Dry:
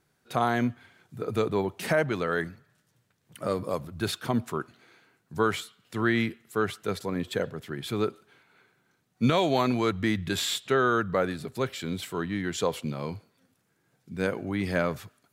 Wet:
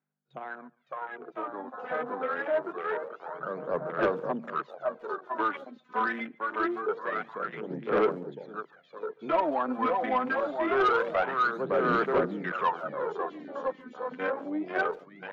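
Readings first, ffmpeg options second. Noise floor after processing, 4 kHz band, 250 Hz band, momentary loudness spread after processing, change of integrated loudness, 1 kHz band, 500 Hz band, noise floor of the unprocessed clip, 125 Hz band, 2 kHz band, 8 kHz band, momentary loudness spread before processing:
−63 dBFS, −12.5 dB, −5.5 dB, 14 LU, −1.5 dB, +3.0 dB, 0.0 dB, −72 dBFS, −14.0 dB, 0.0 dB, below −25 dB, 11 LU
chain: -filter_complex "[0:a]acrossover=split=460 3700:gain=0.158 1 0.224[link_01][link_02][link_03];[link_01][link_02][link_03]amix=inputs=3:normalize=0,asplit=2[link_04][link_05];[link_05]aecho=0:1:560|1008|1366|1653|1882:0.631|0.398|0.251|0.158|0.1[link_06];[link_04][link_06]amix=inputs=2:normalize=0,aphaser=in_gain=1:out_gain=1:delay=4:decay=0.77:speed=0.25:type=sinusoidal,bandreject=frequency=234.9:width_type=h:width=4,bandreject=frequency=469.8:width_type=h:width=4,bandreject=frequency=704.7:width_type=h:width=4,aeval=exprs='val(0)+0.00178*(sin(2*PI*50*n/s)+sin(2*PI*2*50*n/s)/2+sin(2*PI*3*50*n/s)/3+sin(2*PI*4*50*n/s)/4+sin(2*PI*5*50*n/s)/5)':channel_layout=same,acrossover=split=240|1300[link_07][link_08][link_09];[link_09]acompressor=threshold=-44dB:ratio=5[link_10];[link_07][link_08][link_10]amix=inputs=3:normalize=0,afwtdn=0.0178,dynaudnorm=framelen=210:gausssize=21:maxgain=11.5dB,afftfilt=real='re*between(b*sr/4096,130,7200)':imag='im*between(b*sr/4096,130,7200)':win_size=4096:overlap=0.75,adynamicequalizer=threshold=0.0251:dfrequency=1500:dqfactor=0.88:tfrequency=1500:tqfactor=0.88:attack=5:release=100:ratio=0.375:range=2:mode=boostabove:tftype=bell,asoftclip=type=tanh:threshold=-8.5dB,asplit=2[link_11][link_12];[link_12]adelay=140,highpass=300,lowpass=3400,asoftclip=type=hard:threshold=-17.5dB,volume=-25dB[link_13];[link_11][link_13]amix=inputs=2:normalize=0,volume=-9dB"

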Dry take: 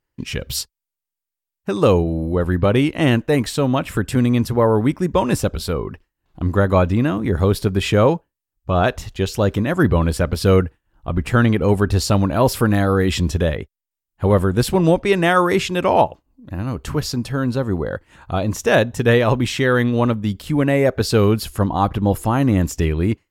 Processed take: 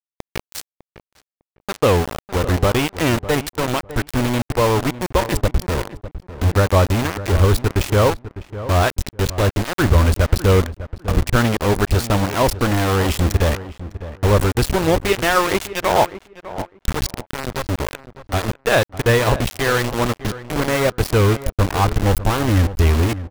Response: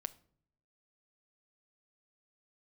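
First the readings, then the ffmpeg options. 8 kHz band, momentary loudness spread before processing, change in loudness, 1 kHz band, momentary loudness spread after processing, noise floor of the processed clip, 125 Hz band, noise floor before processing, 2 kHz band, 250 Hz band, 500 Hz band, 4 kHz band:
+2.5 dB, 10 LU, −0.5 dB, +1.0 dB, 13 LU, below −85 dBFS, +0.5 dB, −85 dBFS, +1.5 dB, −4.0 dB, −1.5 dB, +2.0 dB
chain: -filter_complex "[0:a]asubboost=boost=10:cutoff=53,aeval=exprs='val(0)*gte(abs(val(0)),0.15)':channel_layout=same,asplit=2[link_01][link_02];[link_02]adelay=603,lowpass=frequency=1600:poles=1,volume=-13.5dB,asplit=2[link_03][link_04];[link_04]adelay=603,lowpass=frequency=1600:poles=1,volume=0.19[link_05];[link_01][link_03][link_05]amix=inputs=3:normalize=0"

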